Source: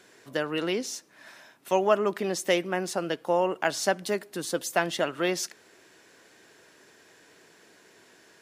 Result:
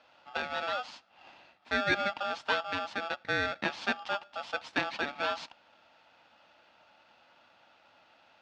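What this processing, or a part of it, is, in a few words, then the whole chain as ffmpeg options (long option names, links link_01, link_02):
ring modulator pedal into a guitar cabinet: -af "aeval=exprs='val(0)*sgn(sin(2*PI*1000*n/s))':channel_layout=same,highpass=100,equalizer=frequency=130:width_type=q:width=4:gain=-4,equalizer=frequency=250:width_type=q:width=4:gain=4,equalizer=frequency=410:width_type=q:width=4:gain=-10,equalizer=frequency=900:width_type=q:width=4:gain=9,lowpass=frequency=4200:width=0.5412,lowpass=frequency=4200:width=1.3066,volume=-5.5dB"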